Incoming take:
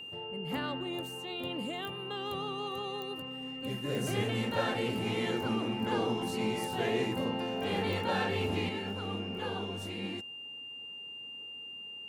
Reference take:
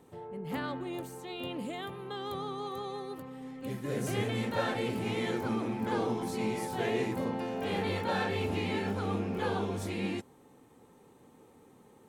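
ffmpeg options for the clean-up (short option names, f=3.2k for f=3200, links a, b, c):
-af "adeclick=t=4,bandreject=f=2.8k:w=30,asetnsamples=n=441:p=0,asendcmd='8.69 volume volume 5dB',volume=0dB"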